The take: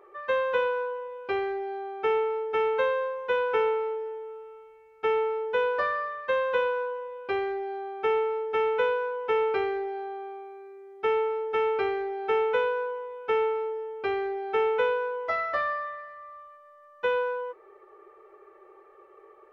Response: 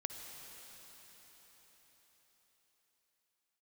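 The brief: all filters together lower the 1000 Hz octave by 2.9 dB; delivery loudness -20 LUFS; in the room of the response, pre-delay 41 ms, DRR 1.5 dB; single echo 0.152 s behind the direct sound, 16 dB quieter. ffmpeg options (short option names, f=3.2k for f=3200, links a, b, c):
-filter_complex "[0:a]equalizer=f=1k:t=o:g=-3.5,aecho=1:1:152:0.158,asplit=2[a][b];[1:a]atrim=start_sample=2205,adelay=41[c];[b][c]afir=irnorm=-1:irlink=0,volume=-1dB[d];[a][d]amix=inputs=2:normalize=0,volume=5dB"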